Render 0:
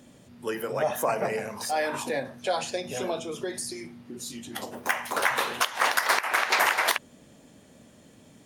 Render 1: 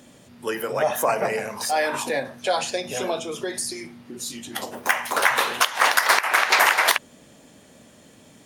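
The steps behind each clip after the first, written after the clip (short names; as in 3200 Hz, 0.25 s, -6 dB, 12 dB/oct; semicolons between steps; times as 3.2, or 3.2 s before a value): low shelf 410 Hz -5.5 dB; gain +6 dB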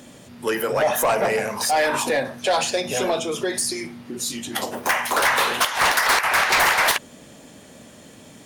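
soft clip -19 dBFS, distortion -8 dB; gain +5.5 dB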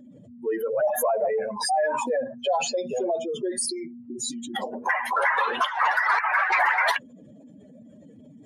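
spectral contrast raised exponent 2.7; gain -3 dB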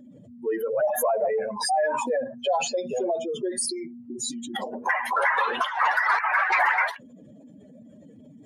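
ending taper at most 160 dB/s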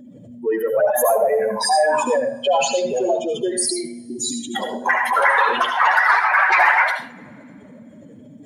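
reverb, pre-delay 71 ms, DRR 6 dB; gain +6 dB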